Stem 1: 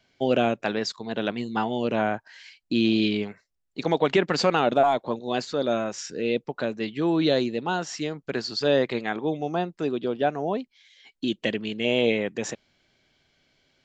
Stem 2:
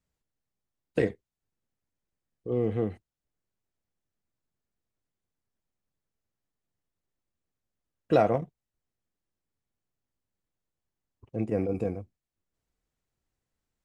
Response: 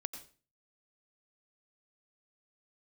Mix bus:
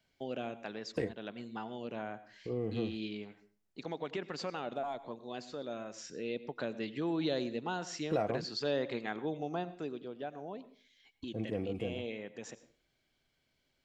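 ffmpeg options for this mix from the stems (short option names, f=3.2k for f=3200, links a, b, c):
-filter_complex "[0:a]volume=-6.5dB,afade=t=in:st=5.97:d=0.69:silence=0.375837,afade=t=out:st=9.6:d=0.44:silence=0.316228,asplit=2[a][b];[b]volume=-3dB[c];[1:a]volume=-0.5dB[d];[2:a]atrim=start_sample=2205[e];[c][e]afir=irnorm=-1:irlink=0[f];[a][d][f]amix=inputs=3:normalize=0,acompressor=threshold=-46dB:ratio=1.5"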